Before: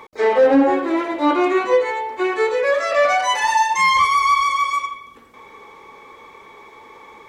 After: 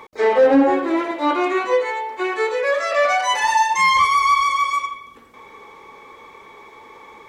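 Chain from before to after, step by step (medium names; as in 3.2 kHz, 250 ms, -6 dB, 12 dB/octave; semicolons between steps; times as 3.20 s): 1.11–3.31 s: bass shelf 310 Hz -8.5 dB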